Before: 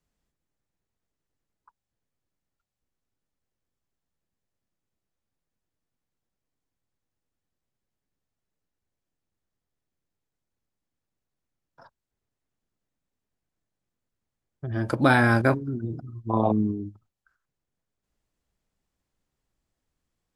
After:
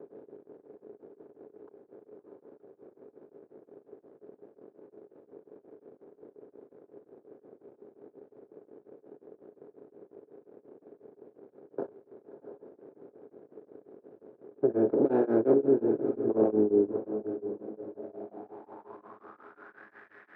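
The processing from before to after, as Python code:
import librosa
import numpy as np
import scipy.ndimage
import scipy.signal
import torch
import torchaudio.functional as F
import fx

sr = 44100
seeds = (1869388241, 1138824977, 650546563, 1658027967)

y = fx.bin_compress(x, sr, power=0.4)
y = fx.highpass(y, sr, hz=150.0, slope=6)
y = fx.tilt_shelf(y, sr, db=8.5, hz=970.0)
y = fx.hum_notches(y, sr, base_hz=60, count=4)
y = fx.leveller(y, sr, passes=2)
y = fx.filter_sweep_bandpass(y, sr, from_hz=420.0, to_hz=1800.0, start_s=17.39, end_s=20.03, q=7.4)
y = fx.echo_diffused(y, sr, ms=649, feedback_pct=45, wet_db=-11.0)
y = y * np.abs(np.cos(np.pi * 5.6 * np.arange(len(y)) / sr))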